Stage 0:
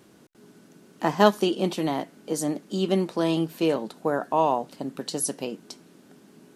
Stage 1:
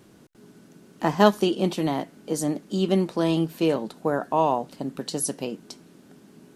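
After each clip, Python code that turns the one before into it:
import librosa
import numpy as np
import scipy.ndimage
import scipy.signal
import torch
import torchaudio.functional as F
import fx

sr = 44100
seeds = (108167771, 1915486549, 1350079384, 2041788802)

y = fx.low_shelf(x, sr, hz=120.0, db=9.5)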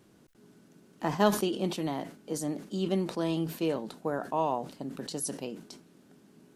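y = fx.sustainer(x, sr, db_per_s=120.0)
y = y * 10.0 ** (-7.5 / 20.0)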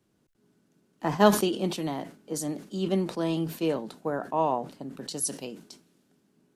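y = fx.band_widen(x, sr, depth_pct=40)
y = y * 10.0 ** (2.0 / 20.0)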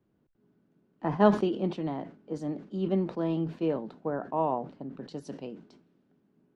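y = fx.spacing_loss(x, sr, db_at_10k=34)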